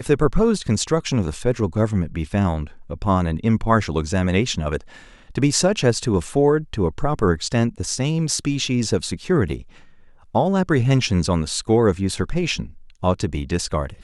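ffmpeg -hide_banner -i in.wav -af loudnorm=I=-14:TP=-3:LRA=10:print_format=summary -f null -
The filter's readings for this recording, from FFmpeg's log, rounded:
Input Integrated:    -21.2 LUFS
Input True Peak:      -3.2 dBTP
Input LRA:             1.5 LU
Input Threshold:     -31.5 LUFS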